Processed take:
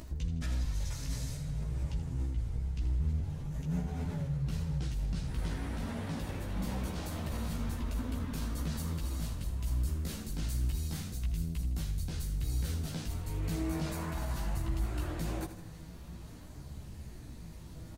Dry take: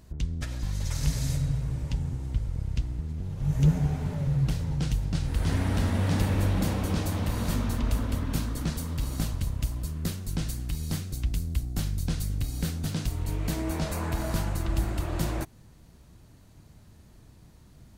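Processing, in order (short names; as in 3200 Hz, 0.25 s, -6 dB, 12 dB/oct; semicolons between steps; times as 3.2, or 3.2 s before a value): reverse; compressor 6:1, threshold -33 dBFS, peak gain reduction 15.5 dB; reverse; limiter -33 dBFS, peak gain reduction 9 dB; upward compressor, threshold -50 dBFS; chorus voices 4, 0.23 Hz, delay 15 ms, depth 3.2 ms; on a send: feedback echo 80 ms, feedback 51%, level -11.5 dB; on the sum: gain +7.5 dB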